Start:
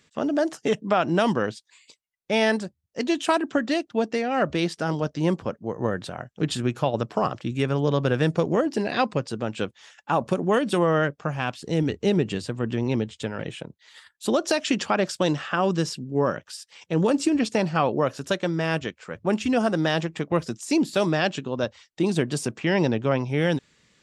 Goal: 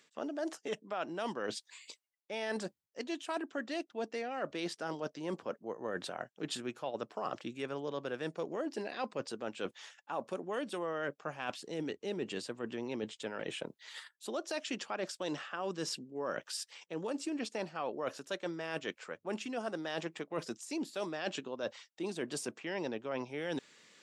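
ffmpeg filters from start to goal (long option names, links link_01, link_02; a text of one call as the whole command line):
ffmpeg -i in.wav -af "highpass=310,areverse,acompressor=threshold=-38dB:ratio=5,areverse,volume=1.5dB" out.wav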